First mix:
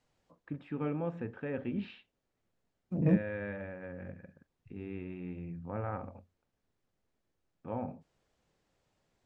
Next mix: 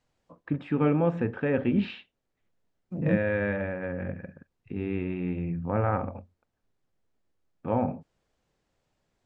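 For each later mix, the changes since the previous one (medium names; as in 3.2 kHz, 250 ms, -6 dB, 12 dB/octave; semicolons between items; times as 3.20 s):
first voice +11.0 dB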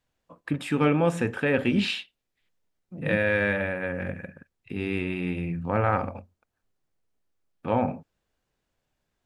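first voice: remove tape spacing loss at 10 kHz 42 dB; second voice -5.5 dB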